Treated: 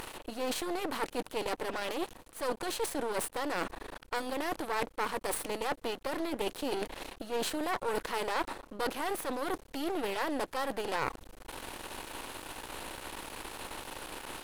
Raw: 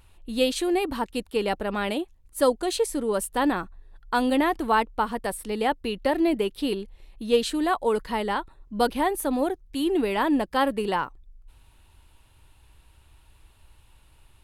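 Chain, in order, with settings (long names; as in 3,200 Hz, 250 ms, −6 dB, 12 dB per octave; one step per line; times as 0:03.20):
compressor on every frequency bin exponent 0.6
reversed playback
downward compressor 10 to 1, threshold −29 dBFS, peak gain reduction 16 dB
reversed playback
half-wave rectification
low-shelf EQ 150 Hz −9 dB
level +4.5 dB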